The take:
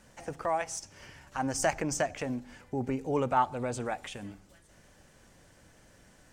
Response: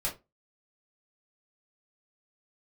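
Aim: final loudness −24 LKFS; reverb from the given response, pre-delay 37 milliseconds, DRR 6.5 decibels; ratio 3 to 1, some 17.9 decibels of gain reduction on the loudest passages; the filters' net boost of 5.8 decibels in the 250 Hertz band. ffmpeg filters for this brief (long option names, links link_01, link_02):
-filter_complex "[0:a]equalizer=frequency=250:width_type=o:gain=6.5,acompressor=threshold=-47dB:ratio=3,asplit=2[link_01][link_02];[1:a]atrim=start_sample=2205,adelay=37[link_03];[link_02][link_03]afir=irnorm=-1:irlink=0,volume=-11.5dB[link_04];[link_01][link_04]amix=inputs=2:normalize=0,volume=22dB"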